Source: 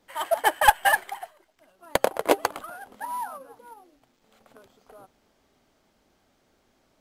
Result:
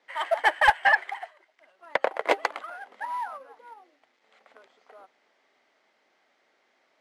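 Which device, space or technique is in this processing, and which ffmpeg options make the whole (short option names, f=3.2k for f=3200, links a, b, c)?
intercom: -filter_complex "[0:a]asettb=1/sr,asplit=3[a][b][c];[a]atrim=end=0.794[d];[b]atrim=start=0.79:end=2.22,asetpts=PTS-STARTPTS,afade=t=in:d=0.004:c=qsin,afade=t=out:st=1.426:d=0.004:c=qsin,acrossover=split=2900[e][f];[f]acompressor=threshold=-39dB:ratio=4:attack=1:release=60[g];[e][g]amix=inputs=2:normalize=0[h];[c]atrim=start=2.216[i];[d][h]acrossfade=d=0.004:c1=hsin:c2=qsin[j];[j][i]acrossfade=d=0.004:c1=qsin:c2=hsin,highpass=490,lowpass=4.7k,equalizer=f=2k:t=o:w=0.41:g=8.5,asoftclip=type=tanh:threshold=-8dB"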